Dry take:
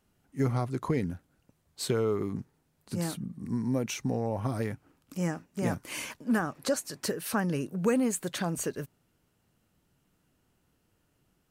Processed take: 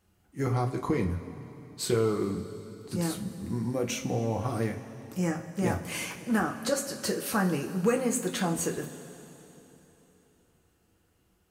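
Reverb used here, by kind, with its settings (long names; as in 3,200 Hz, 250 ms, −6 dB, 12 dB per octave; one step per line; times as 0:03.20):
coupled-rooms reverb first 0.26 s, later 3.5 s, from −18 dB, DRR 1 dB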